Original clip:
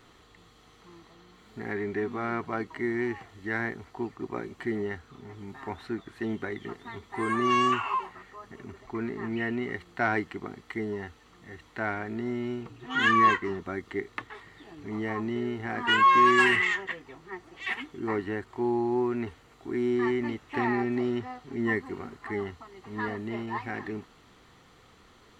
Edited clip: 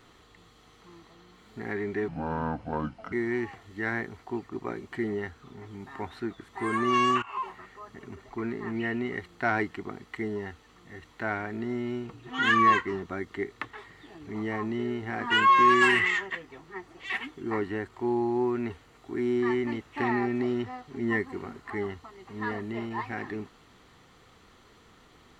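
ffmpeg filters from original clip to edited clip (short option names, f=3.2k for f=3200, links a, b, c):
-filter_complex "[0:a]asplit=5[a][b][c][d][e];[a]atrim=end=2.084[f];[b]atrim=start=2.08:end=2.8,asetpts=PTS-STARTPTS,asetrate=30429,aresample=44100,atrim=end_sample=46017,asetpts=PTS-STARTPTS[g];[c]atrim=start=2.796:end=6.162[h];[d]atrim=start=7.048:end=7.79,asetpts=PTS-STARTPTS,afade=t=out:st=0.738:d=0.004:c=hsin:silence=0.11885[i];[e]atrim=start=7.79,asetpts=PTS-STARTPTS,afade=t=in:d=0.29:silence=0.11885[j];[f][g]acrossfade=d=0.004:c1=hsin:c2=hsin[k];[k][h]acrossfade=d=0.004:c1=hsin:c2=hsin[l];[i][j]concat=n=2:v=0:a=1[m];[l][m]acrossfade=d=0.004:c1=hsin:c2=hsin"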